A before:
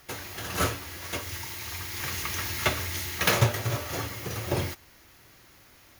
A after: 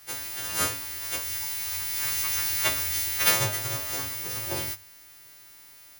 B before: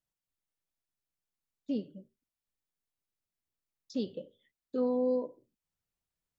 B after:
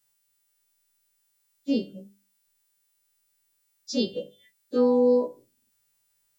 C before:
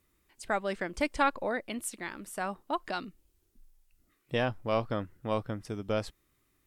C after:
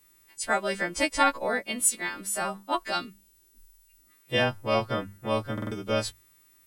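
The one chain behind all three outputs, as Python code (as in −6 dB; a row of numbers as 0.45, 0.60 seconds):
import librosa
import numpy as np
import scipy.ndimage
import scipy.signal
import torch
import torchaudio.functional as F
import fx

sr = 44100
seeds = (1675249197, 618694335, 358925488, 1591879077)

y = fx.freq_snap(x, sr, grid_st=2)
y = fx.hum_notches(y, sr, base_hz=50, count=4)
y = fx.buffer_glitch(y, sr, at_s=(5.53,), block=2048, repeats=3)
y = y * 10.0 ** (-30 / 20.0) / np.sqrt(np.mean(np.square(y)))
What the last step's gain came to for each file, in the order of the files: −4.5, +9.5, +4.0 decibels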